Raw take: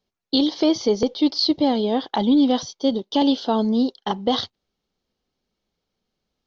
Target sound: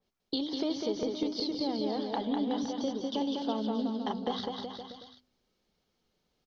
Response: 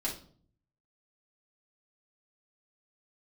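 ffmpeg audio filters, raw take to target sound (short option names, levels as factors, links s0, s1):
-filter_complex "[0:a]bandreject=f=50:t=h:w=6,bandreject=f=100:t=h:w=6,bandreject=f=150:t=h:w=6,bandreject=f=200:t=h:w=6,bandreject=f=250:t=h:w=6,bandreject=f=300:t=h:w=6,acompressor=threshold=0.0178:ratio=3,asplit=2[s0][s1];[s1]aecho=0:1:200|370|514.5|637.3|741.7:0.631|0.398|0.251|0.158|0.1[s2];[s0][s2]amix=inputs=2:normalize=0,adynamicequalizer=threshold=0.00398:dfrequency=2700:dqfactor=0.7:tfrequency=2700:tqfactor=0.7:attack=5:release=100:ratio=0.375:range=2:mode=cutabove:tftype=highshelf"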